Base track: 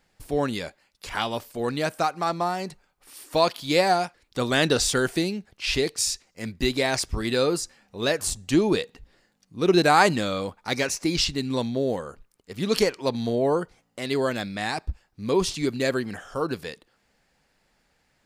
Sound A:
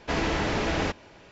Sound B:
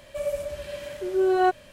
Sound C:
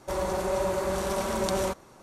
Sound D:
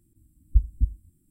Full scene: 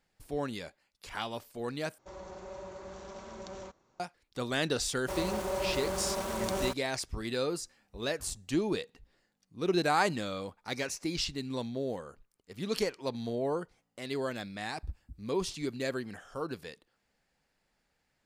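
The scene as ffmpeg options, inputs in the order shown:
-filter_complex "[3:a]asplit=2[a][b];[4:a]asplit=2[c][d];[0:a]volume=-9.5dB[e];[a]aresample=16000,aresample=44100[f];[b]aeval=exprs='val(0)*gte(abs(val(0)),0.02)':c=same[g];[c]highpass=f=300:p=1[h];[d]highpass=f=180:p=1[i];[e]asplit=2[j][k];[j]atrim=end=1.984[l];[f]atrim=end=2.02,asetpts=PTS-STARTPTS,volume=-17dB[m];[k]atrim=start=3.996[n];[g]atrim=end=2.02,asetpts=PTS-STARTPTS,volume=-5.5dB,afade=t=in:d=0.004:c=hsin,afade=t=out:st=2.016:d=0.004:c=hsin,adelay=5000[o];[h]atrim=end=1.3,asetpts=PTS-STARTPTS,volume=-17dB,afade=t=in:d=0.004:c=hsin,afade=t=out:st=1.296:d=0.004:c=hsin,adelay=7390[p];[i]atrim=end=1.3,asetpts=PTS-STARTPTS,volume=-15.5dB,afade=t=in:d=0.004:c=hsin,afade=t=out:st=1.296:d=0.004:c=hsin,adelay=629748S[q];[l][m]acrossfade=d=0.004:c1=hsin:c2=hsin[r];[r][n]acrossfade=d=0.004:c1=hsin:c2=hsin[s];[s][o][p][q]amix=inputs=4:normalize=0"

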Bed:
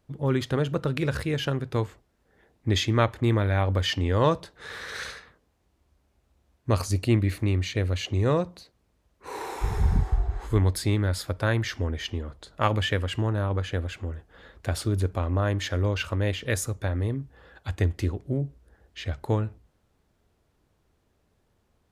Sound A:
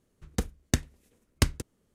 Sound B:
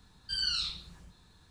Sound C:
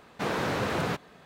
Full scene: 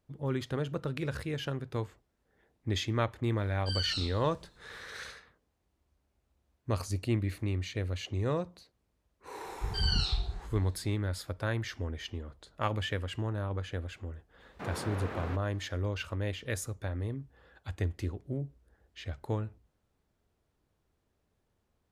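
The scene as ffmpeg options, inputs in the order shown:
-filter_complex "[2:a]asplit=2[a][b];[0:a]volume=-8dB[c];[b]highshelf=f=7.7k:g=-8[d];[3:a]acrossover=split=2600[e][f];[f]acompressor=threshold=-51dB:ratio=4:attack=1:release=60[g];[e][g]amix=inputs=2:normalize=0[h];[a]atrim=end=1.5,asetpts=PTS-STARTPTS,volume=-3.5dB,afade=t=in:d=0.004:c=hsin,afade=t=out:st=1.496:d=0.004:c=hsin,adelay=148617S[i];[d]atrim=end=1.5,asetpts=PTS-STARTPTS,afade=t=in:d=0.004:c=hsin,afade=t=out:st=1.496:d=0.004:c=hsin,adelay=9450[j];[h]atrim=end=1.25,asetpts=PTS-STARTPTS,volume=-10dB,afade=t=in:d=0.004:c=hsin,afade=t=out:st=1.246:d=0.004:c=hsin,adelay=14400[k];[c][i][j][k]amix=inputs=4:normalize=0"

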